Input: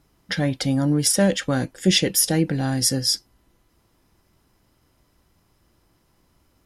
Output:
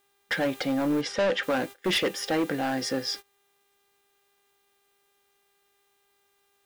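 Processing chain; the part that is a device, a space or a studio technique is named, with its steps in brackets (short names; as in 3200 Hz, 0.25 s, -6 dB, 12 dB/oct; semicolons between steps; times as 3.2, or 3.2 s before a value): aircraft radio (BPF 400–2500 Hz; hard clip -24.5 dBFS, distortion -9 dB; buzz 400 Hz, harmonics 10, -54 dBFS -3 dB/oct; white noise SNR 20 dB; gate -40 dBFS, range -22 dB); 1.01–1.43 LPF 5700 Hz 12 dB/oct; gain +3.5 dB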